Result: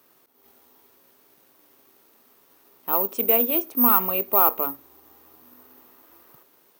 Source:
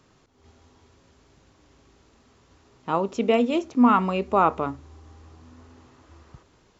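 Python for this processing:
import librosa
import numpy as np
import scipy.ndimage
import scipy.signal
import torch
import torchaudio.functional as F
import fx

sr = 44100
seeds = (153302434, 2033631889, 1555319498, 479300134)

p1 = scipy.signal.sosfilt(scipy.signal.butter(2, 300.0, 'highpass', fs=sr, output='sos'), x)
p2 = np.clip(p1, -10.0 ** (-23.0 / 20.0), 10.0 ** (-23.0 / 20.0))
p3 = p1 + (p2 * 10.0 ** (-9.5 / 20.0))
p4 = (np.kron(scipy.signal.resample_poly(p3, 1, 3), np.eye(3)[0]) * 3)[:len(p3)]
y = p4 * 10.0 ** (-4.0 / 20.0)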